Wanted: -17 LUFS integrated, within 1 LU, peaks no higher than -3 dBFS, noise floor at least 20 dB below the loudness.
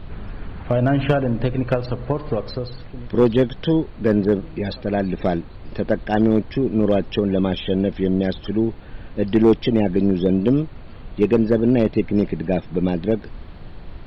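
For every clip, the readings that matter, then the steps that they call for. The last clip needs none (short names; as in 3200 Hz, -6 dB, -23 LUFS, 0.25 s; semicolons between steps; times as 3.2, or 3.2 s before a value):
clipped 0.6%; flat tops at -7.5 dBFS; noise floor -38 dBFS; noise floor target -41 dBFS; loudness -20.5 LUFS; peak -7.5 dBFS; loudness target -17.0 LUFS
-> clip repair -7.5 dBFS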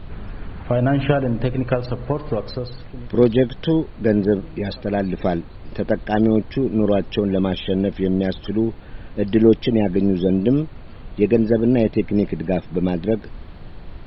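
clipped 0.0%; noise floor -38 dBFS; noise floor target -41 dBFS
-> noise print and reduce 6 dB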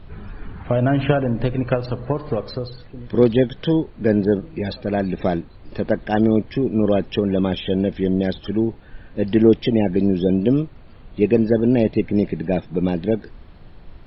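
noise floor -43 dBFS; loudness -20.5 LUFS; peak -2.0 dBFS; loudness target -17.0 LUFS
-> gain +3.5 dB; limiter -3 dBFS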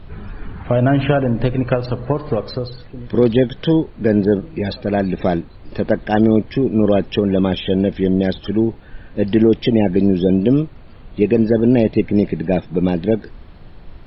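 loudness -17.5 LUFS; peak -3.0 dBFS; noise floor -40 dBFS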